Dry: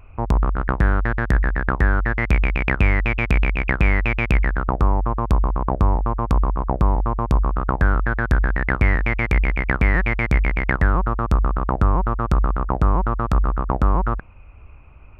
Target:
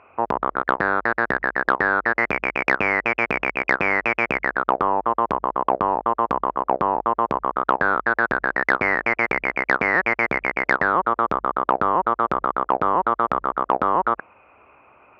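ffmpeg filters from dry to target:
ffmpeg -i in.wav -af "highpass=450,lowpass=2000,acontrast=77" out.wav

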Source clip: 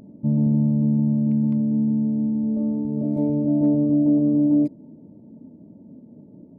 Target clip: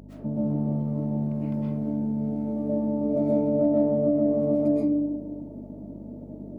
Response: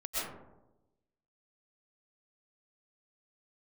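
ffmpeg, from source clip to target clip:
-filter_complex "[1:a]atrim=start_sample=2205[link_01];[0:a][link_01]afir=irnorm=-1:irlink=0,acompressor=threshold=-23dB:ratio=2,aeval=exprs='val(0)+0.02*(sin(2*PI*50*n/s)+sin(2*PI*2*50*n/s)/2+sin(2*PI*3*50*n/s)/3+sin(2*PI*4*50*n/s)/4+sin(2*PI*5*50*n/s)/5)':channel_layout=same,highpass=frequency=600:poles=1,volume=7dB"

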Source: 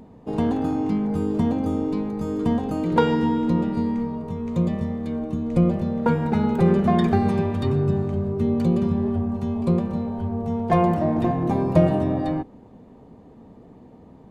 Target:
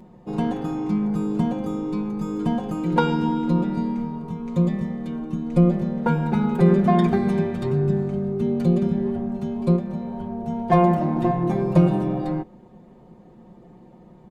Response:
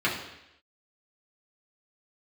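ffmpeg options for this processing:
-filter_complex "[0:a]aecho=1:1:5.6:0.81,asettb=1/sr,asplit=3[link_01][link_02][link_03];[link_01]atrim=end=9.764[link_04];[link_02]atrim=start=9.76:end=10.46,asetpts=PTS-STARTPTS,afade=type=in:duration=0.004:curve=qsin,afade=type=out:start_time=0.696:duration=0.004:curve=qsin,acompressor=threshold=-24dB:ratio=2[link_05];[link_03]atrim=start=10.456[link_06];[link_04][link_05]acrossfade=duration=0.004:curve1=hsin:curve2=qsin[link_07];[link_07][link_06]acrossfade=duration=0.004:curve1=qsin:curve2=hsin,volume=-2.5dB"

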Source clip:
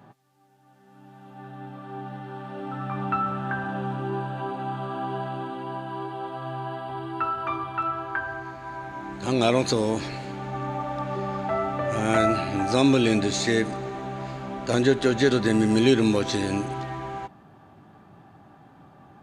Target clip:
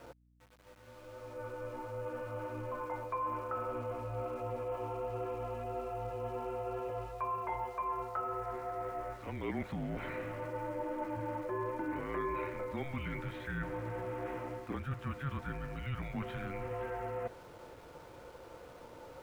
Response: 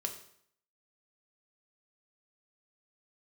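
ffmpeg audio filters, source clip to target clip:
-af "highpass=frequency=290:width=0.5412,highpass=frequency=290:width=1.3066,areverse,acompressor=threshold=-40dB:ratio=4,areverse,highpass=frequency=380:width_type=q:width=0.5412,highpass=frequency=380:width_type=q:width=1.307,lowpass=frequency=2800:width_type=q:width=0.5176,lowpass=frequency=2800:width_type=q:width=0.7071,lowpass=frequency=2800:width_type=q:width=1.932,afreqshift=-280,aeval=exprs='val(0)*gte(abs(val(0)),0.00112)':channel_layout=same,aeval=exprs='val(0)+0.000316*(sin(2*PI*60*n/s)+sin(2*PI*2*60*n/s)/2+sin(2*PI*3*60*n/s)/3+sin(2*PI*4*60*n/s)/4+sin(2*PI*5*60*n/s)/5)':channel_layout=same,volume=3.5dB"

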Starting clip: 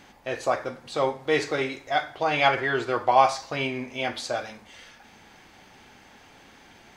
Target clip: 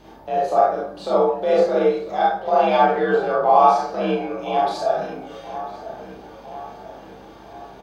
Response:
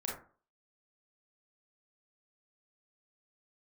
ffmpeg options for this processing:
-filter_complex "[0:a]equalizer=frequency=500:width_type=o:width=1:gain=5,equalizer=frequency=2000:width_type=o:width=1:gain=-11,equalizer=frequency=8000:width_type=o:width=1:gain=-11,asplit=2[link_01][link_02];[link_02]acompressor=threshold=-35dB:ratio=10,volume=0dB[link_03];[link_01][link_03]amix=inputs=2:normalize=0,asplit=2[link_04][link_05];[link_05]adelay=888,lowpass=frequency=3100:poles=1,volume=-14dB,asplit=2[link_06][link_07];[link_07]adelay=888,lowpass=frequency=3100:poles=1,volume=0.54,asplit=2[link_08][link_09];[link_09]adelay=888,lowpass=frequency=3100:poles=1,volume=0.54,asplit=2[link_10][link_11];[link_11]adelay=888,lowpass=frequency=3100:poles=1,volume=0.54,asplit=2[link_12][link_13];[link_13]adelay=888,lowpass=frequency=3100:poles=1,volume=0.54[link_14];[link_04][link_06][link_08][link_10][link_12][link_14]amix=inputs=6:normalize=0,atempo=0.89,afreqshift=53,asplit=2[link_15][link_16];[link_16]adelay=31,volume=-4.5dB[link_17];[link_15][link_17]amix=inputs=2:normalize=0[link_18];[1:a]atrim=start_sample=2205,asetrate=41013,aresample=44100[link_19];[link_18][link_19]afir=irnorm=-1:irlink=0,aeval=exprs='val(0)+0.00224*(sin(2*PI*50*n/s)+sin(2*PI*2*50*n/s)/2+sin(2*PI*3*50*n/s)/3+sin(2*PI*4*50*n/s)/4+sin(2*PI*5*50*n/s)/5)':channel_layout=same,volume=-1dB"

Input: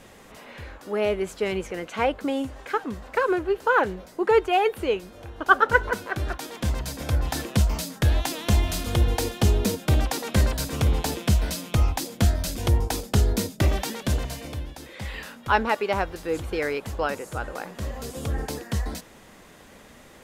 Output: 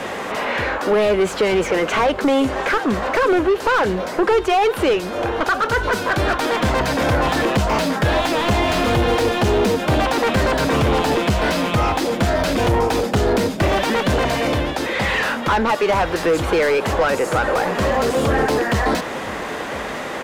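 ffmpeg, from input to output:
ffmpeg -i in.wav -filter_complex "[0:a]acrossover=split=150|3500[link_01][link_02][link_03];[link_01]acompressor=threshold=-27dB:ratio=4[link_04];[link_02]acompressor=threshold=-32dB:ratio=4[link_05];[link_03]acompressor=threshold=-43dB:ratio=4[link_06];[link_04][link_05][link_06]amix=inputs=3:normalize=0,asplit=2[link_07][link_08];[link_08]highpass=frequency=720:poles=1,volume=30dB,asoftclip=type=tanh:threshold=-12dB[link_09];[link_07][link_09]amix=inputs=2:normalize=0,lowpass=frequency=1300:poles=1,volume=-6dB,aecho=1:1:1002:0.133,volume=5.5dB" out.wav

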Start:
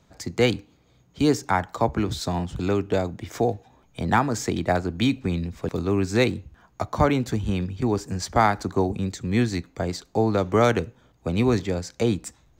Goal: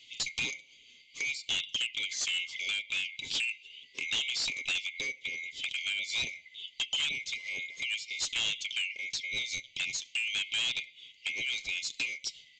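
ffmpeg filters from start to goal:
ffmpeg -i in.wav -af "afftfilt=real='real(if(lt(b,920),b+92*(1-2*mod(floor(b/92),2)),b),0)':imag='imag(if(lt(b,920),b+92*(1-2*mod(floor(b/92),2)),b),0)':win_size=2048:overlap=0.75,aecho=1:1:7.5:0.42,acompressor=threshold=-33dB:ratio=4,firequalizer=gain_entry='entry(130,0);entry(540,-5);entry(1400,-21);entry(3100,15);entry(5800,7)':delay=0.05:min_phase=1,aresample=16000,volume=27.5dB,asoftclip=hard,volume=-27.5dB,aresample=44100" out.wav

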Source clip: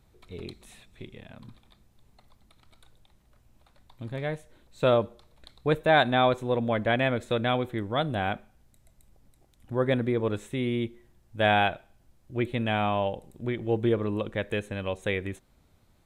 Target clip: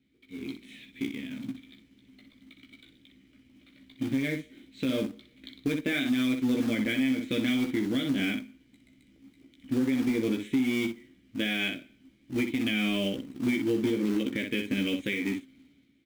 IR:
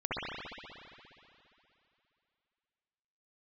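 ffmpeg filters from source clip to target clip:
-filter_complex "[0:a]asplit=3[link_01][link_02][link_03];[link_01]bandpass=frequency=270:width_type=q:width=8,volume=0dB[link_04];[link_02]bandpass=frequency=2290:width_type=q:width=8,volume=-6dB[link_05];[link_03]bandpass=frequency=3010:width_type=q:width=8,volume=-9dB[link_06];[link_04][link_05][link_06]amix=inputs=3:normalize=0,asplit=2[link_07][link_08];[link_08]acrusher=bits=2:mode=log:mix=0:aa=0.000001,volume=-4.5dB[link_09];[link_07][link_09]amix=inputs=2:normalize=0,acompressor=threshold=-40dB:ratio=2,asplit=2[link_10][link_11];[link_11]aecho=0:1:15|61:0.668|0.422[link_12];[link_10][link_12]amix=inputs=2:normalize=0,dynaudnorm=framelen=140:gausssize=9:maxgain=12dB,alimiter=limit=-21dB:level=0:latency=1:release=123,volume=2.5dB"

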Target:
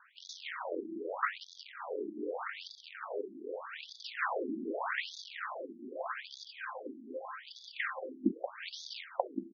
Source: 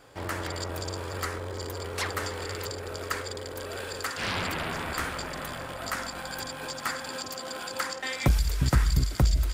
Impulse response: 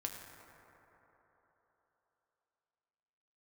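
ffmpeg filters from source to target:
-filter_complex "[0:a]acrossover=split=180 2900:gain=0.158 1 0.158[link_01][link_02][link_03];[link_01][link_02][link_03]amix=inputs=3:normalize=0,asplit=2[link_04][link_05];[link_05]adelay=180.8,volume=-8dB,highshelf=frequency=4000:gain=-4.07[link_06];[link_04][link_06]amix=inputs=2:normalize=0,asplit=2[link_07][link_08];[link_08]acrusher=bits=4:mix=0:aa=0.000001,volume=-6dB[link_09];[link_07][link_09]amix=inputs=2:normalize=0,afftfilt=real='re*between(b*sr/1024,260*pow(4800/260,0.5+0.5*sin(2*PI*0.82*pts/sr))/1.41,260*pow(4800/260,0.5+0.5*sin(2*PI*0.82*pts/sr))*1.41)':imag='im*between(b*sr/1024,260*pow(4800/260,0.5+0.5*sin(2*PI*0.82*pts/sr))/1.41,260*pow(4800/260,0.5+0.5*sin(2*PI*0.82*pts/sr))*1.41)':win_size=1024:overlap=0.75,volume=1dB"

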